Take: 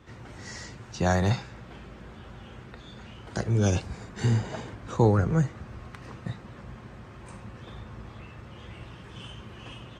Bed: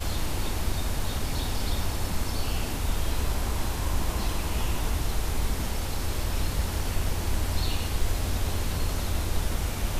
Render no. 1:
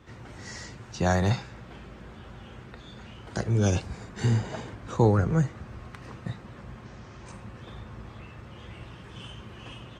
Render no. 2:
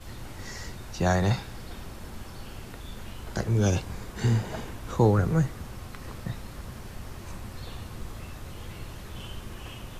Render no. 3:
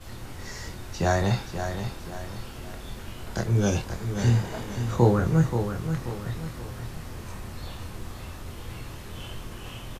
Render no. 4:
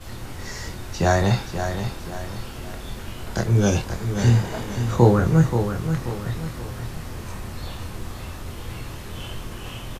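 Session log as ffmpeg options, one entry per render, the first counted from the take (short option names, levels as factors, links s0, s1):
-filter_complex "[0:a]asettb=1/sr,asplit=3[s0][s1][s2];[s0]atrim=end=6.854[s3];[s1]atrim=start=6.85:end=7.32,asetpts=PTS-STARTPTS,afade=t=in:d=0.004:c=qsin,afade=t=out:st=0.466:d=0.004:c=qsin,lowpass=f=6100:t=q:w=2.5[s4];[s2]atrim=start=7.316[s5];[s3][s4]acrossfade=d=0.004:c1=hsin:c2=qsin[s6];[s6][s5]acrossfade=d=0.004:c1=qsin:c2=hsin"
-filter_complex "[1:a]volume=0.188[s0];[0:a][s0]amix=inputs=2:normalize=0"
-filter_complex "[0:a]asplit=2[s0][s1];[s1]adelay=25,volume=0.531[s2];[s0][s2]amix=inputs=2:normalize=0,aecho=1:1:530|1060|1590|2120|2650:0.398|0.159|0.0637|0.0255|0.0102"
-af "volume=1.68"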